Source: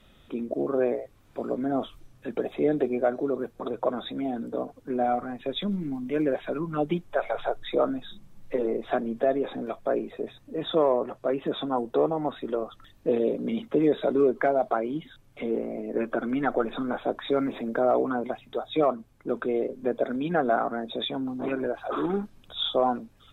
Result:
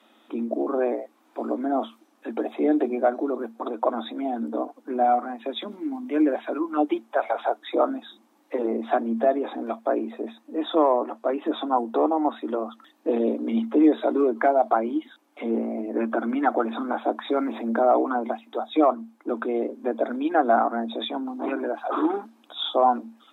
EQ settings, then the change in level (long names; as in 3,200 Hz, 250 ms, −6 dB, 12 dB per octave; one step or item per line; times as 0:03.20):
Chebyshev high-pass with heavy ripple 220 Hz, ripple 9 dB
+8.0 dB